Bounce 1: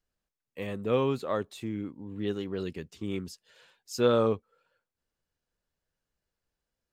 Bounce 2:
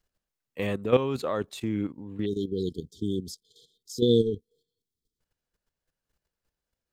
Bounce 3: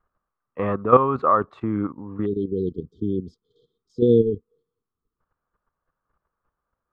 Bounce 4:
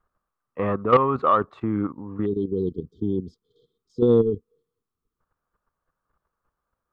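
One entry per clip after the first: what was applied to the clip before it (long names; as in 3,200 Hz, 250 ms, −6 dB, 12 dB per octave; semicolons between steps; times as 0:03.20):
output level in coarse steps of 12 dB; time-frequency box erased 0:02.26–0:05.20, 490–3,100 Hz; level +8 dB
low-pass with resonance 1,200 Hz, resonance Q 6.1; level +4 dB
soft clipping −6.5 dBFS, distortion −17 dB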